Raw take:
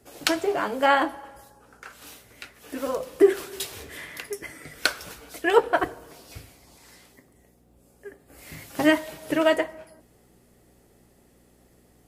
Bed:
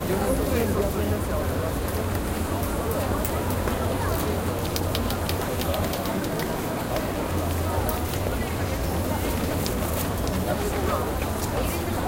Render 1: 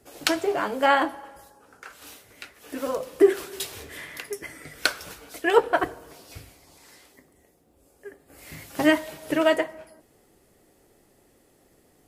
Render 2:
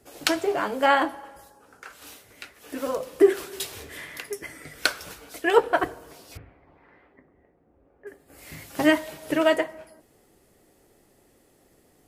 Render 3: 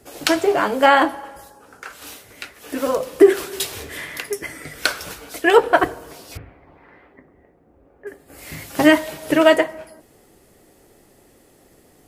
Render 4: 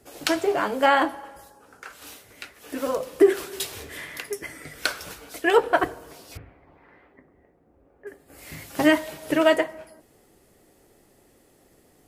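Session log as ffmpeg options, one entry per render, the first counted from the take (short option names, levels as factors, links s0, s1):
-af "bandreject=f=60:t=h:w=4,bandreject=f=120:t=h:w=4,bandreject=f=180:t=h:w=4,bandreject=f=240:t=h:w=4"
-filter_complex "[0:a]asettb=1/sr,asplit=3[s0][s1][s2];[s0]atrim=end=6.374[s3];[s1]atrim=start=6.37:end=8.07,asetpts=PTS-STARTPTS,afade=t=in:d=0.004:c=qsin,afade=t=out:st=1.696:d=0.004:c=qsin,lowpass=f=2000:w=0.5412,lowpass=f=2000:w=1.3066[s4];[s2]atrim=start=8.066[s5];[s3][s4]acrossfade=d=0.004:c1=hsin:c2=qsin[s6];[s6][s5]acrossfade=d=0.004:c1=qsin:c2=hsin"
-af "alimiter=level_in=2.37:limit=0.891:release=50:level=0:latency=1"
-af "volume=0.531"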